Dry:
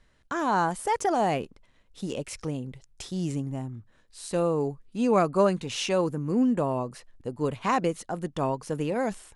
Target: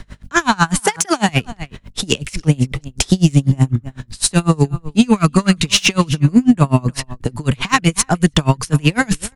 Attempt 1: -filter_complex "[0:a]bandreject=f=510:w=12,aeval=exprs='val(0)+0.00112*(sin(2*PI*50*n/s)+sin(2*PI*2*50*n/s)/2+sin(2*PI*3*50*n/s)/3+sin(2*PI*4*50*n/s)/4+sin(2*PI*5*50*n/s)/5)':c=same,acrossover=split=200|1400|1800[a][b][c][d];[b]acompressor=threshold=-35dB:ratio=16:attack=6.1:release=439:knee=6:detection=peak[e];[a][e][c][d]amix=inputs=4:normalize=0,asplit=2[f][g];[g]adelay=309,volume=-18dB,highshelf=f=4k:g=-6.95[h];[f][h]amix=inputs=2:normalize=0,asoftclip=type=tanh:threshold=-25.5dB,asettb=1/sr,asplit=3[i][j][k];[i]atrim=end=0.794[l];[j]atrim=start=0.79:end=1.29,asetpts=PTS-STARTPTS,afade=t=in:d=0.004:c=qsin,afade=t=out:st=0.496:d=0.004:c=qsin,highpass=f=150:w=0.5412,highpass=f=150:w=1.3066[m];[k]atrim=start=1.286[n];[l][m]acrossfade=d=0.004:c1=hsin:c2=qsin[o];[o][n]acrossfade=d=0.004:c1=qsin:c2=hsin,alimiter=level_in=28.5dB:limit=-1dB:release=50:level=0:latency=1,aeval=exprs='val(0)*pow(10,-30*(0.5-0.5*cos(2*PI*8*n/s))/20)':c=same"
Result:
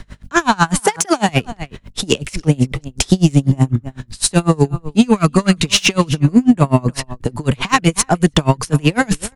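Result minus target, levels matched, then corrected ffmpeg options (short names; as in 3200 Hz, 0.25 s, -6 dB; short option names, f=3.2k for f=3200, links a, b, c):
compressor: peak gain reduction -6 dB
-filter_complex "[0:a]bandreject=f=510:w=12,aeval=exprs='val(0)+0.00112*(sin(2*PI*50*n/s)+sin(2*PI*2*50*n/s)/2+sin(2*PI*3*50*n/s)/3+sin(2*PI*4*50*n/s)/4+sin(2*PI*5*50*n/s)/5)':c=same,acrossover=split=200|1400|1800[a][b][c][d];[b]acompressor=threshold=-41.5dB:ratio=16:attack=6.1:release=439:knee=6:detection=peak[e];[a][e][c][d]amix=inputs=4:normalize=0,asplit=2[f][g];[g]adelay=309,volume=-18dB,highshelf=f=4k:g=-6.95[h];[f][h]amix=inputs=2:normalize=0,asoftclip=type=tanh:threshold=-25.5dB,asettb=1/sr,asplit=3[i][j][k];[i]atrim=end=0.794[l];[j]atrim=start=0.79:end=1.29,asetpts=PTS-STARTPTS,afade=t=in:d=0.004:c=qsin,afade=t=out:st=0.496:d=0.004:c=qsin,highpass=f=150:w=0.5412,highpass=f=150:w=1.3066[m];[k]atrim=start=1.286[n];[l][m]acrossfade=d=0.004:c1=hsin:c2=qsin[o];[o][n]acrossfade=d=0.004:c1=qsin:c2=hsin,alimiter=level_in=28.5dB:limit=-1dB:release=50:level=0:latency=1,aeval=exprs='val(0)*pow(10,-30*(0.5-0.5*cos(2*PI*8*n/s))/20)':c=same"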